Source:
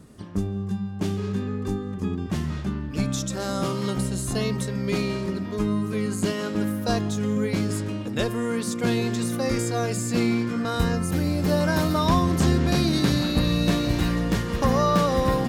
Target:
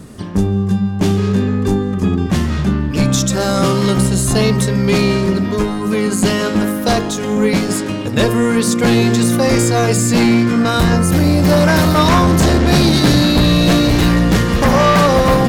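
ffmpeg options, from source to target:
-af "aeval=exprs='0.398*(cos(1*acos(clip(val(0)/0.398,-1,1)))-cos(1*PI/2))+0.2*(cos(5*acos(clip(val(0)/0.398,-1,1)))-cos(5*PI/2))':c=same,bandreject=f=51.77:t=h:w=4,bandreject=f=103.54:t=h:w=4,bandreject=f=155.31:t=h:w=4,bandreject=f=207.08:t=h:w=4,bandreject=f=258.85:t=h:w=4,bandreject=f=310.62:t=h:w=4,bandreject=f=362.39:t=h:w=4,bandreject=f=414.16:t=h:w=4,bandreject=f=465.93:t=h:w=4,bandreject=f=517.7:t=h:w=4,bandreject=f=569.47:t=h:w=4,bandreject=f=621.24:t=h:w=4,bandreject=f=673.01:t=h:w=4,bandreject=f=724.78:t=h:w=4,bandreject=f=776.55:t=h:w=4,bandreject=f=828.32:t=h:w=4,bandreject=f=880.09:t=h:w=4,bandreject=f=931.86:t=h:w=4,bandreject=f=983.63:t=h:w=4,bandreject=f=1035.4:t=h:w=4,bandreject=f=1087.17:t=h:w=4,bandreject=f=1138.94:t=h:w=4,bandreject=f=1190.71:t=h:w=4,bandreject=f=1242.48:t=h:w=4,bandreject=f=1294.25:t=h:w=4,bandreject=f=1346.02:t=h:w=4,bandreject=f=1397.79:t=h:w=4,bandreject=f=1449.56:t=h:w=4,bandreject=f=1501.33:t=h:w=4,volume=1.41"

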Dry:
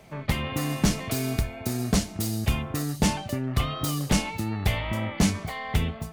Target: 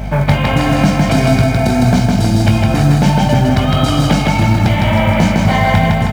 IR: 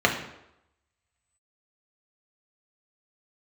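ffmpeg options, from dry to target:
-filter_complex "[0:a]flanger=delay=16.5:depth=5.1:speed=1.5,acompressor=threshold=0.0178:ratio=6,highpass=f=92:w=0.5412,highpass=f=92:w=1.3066,highshelf=f=3800:g=-10.5,aecho=1:1:1.3:0.5,asplit=2[s0][s1];[s1]aecho=0:1:158|316|474|632|790|948|1106|1264|1422:0.708|0.418|0.246|0.145|0.0858|0.0506|0.0299|0.0176|0.0104[s2];[s0][s2]amix=inputs=2:normalize=0,apsyclip=23.7,aeval=exprs='val(0)+0.126*(sin(2*PI*50*n/s)+sin(2*PI*2*50*n/s)/2+sin(2*PI*3*50*n/s)/3+sin(2*PI*4*50*n/s)/4+sin(2*PI*5*50*n/s)/5)':c=same,lowpass=7800,asplit=2[s3][s4];[s4]acrusher=bits=5:mode=log:mix=0:aa=0.000001,volume=0.562[s5];[s3][s5]amix=inputs=2:normalize=0,volume=0.473"

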